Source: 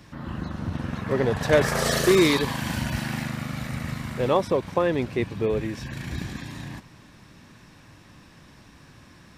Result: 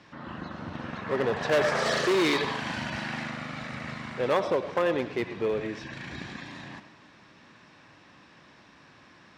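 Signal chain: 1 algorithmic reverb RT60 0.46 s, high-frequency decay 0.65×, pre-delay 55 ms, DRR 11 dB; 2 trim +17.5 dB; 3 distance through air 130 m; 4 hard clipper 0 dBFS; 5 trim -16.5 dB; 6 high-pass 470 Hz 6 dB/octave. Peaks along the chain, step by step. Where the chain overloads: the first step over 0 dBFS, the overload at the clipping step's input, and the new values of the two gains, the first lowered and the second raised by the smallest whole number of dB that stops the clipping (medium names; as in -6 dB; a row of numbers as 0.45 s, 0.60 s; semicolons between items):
-7.0 dBFS, +10.5 dBFS, +10.0 dBFS, 0.0 dBFS, -16.5 dBFS, -11.5 dBFS; step 2, 10.0 dB; step 2 +7.5 dB, step 5 -6.5 dB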